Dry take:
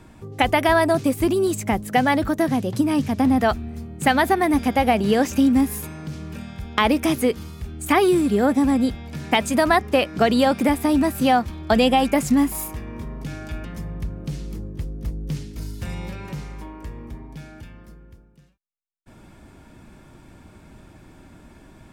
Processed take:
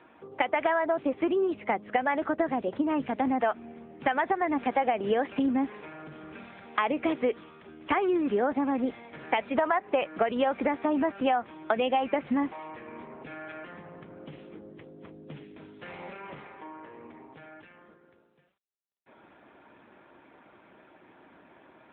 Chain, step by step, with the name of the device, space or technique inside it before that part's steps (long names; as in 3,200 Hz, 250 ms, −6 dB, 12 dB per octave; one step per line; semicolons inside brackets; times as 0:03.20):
0:09.55–0:10.07: dynamic equaliser 870 Hz, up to +4 dB, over −33 dBFS, Q 2.5
voicemail (band-pass filter 420–2,800 Hz; downward compressor 10 to 1, threshold −21 dBFS, peak gain reduction 10 dB; AMR narrowband 7.95 kbit/s 8,000 Hz)